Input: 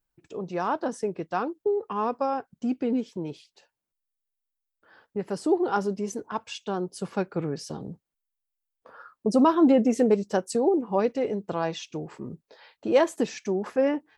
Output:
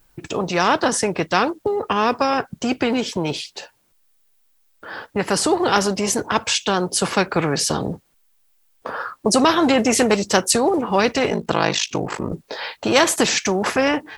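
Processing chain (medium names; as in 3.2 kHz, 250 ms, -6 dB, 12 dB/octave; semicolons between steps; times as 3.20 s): 11.29–12.32 s: ring modulator 26 Hz; spectrum-flattening compressor 2:1; trim +7.5 dB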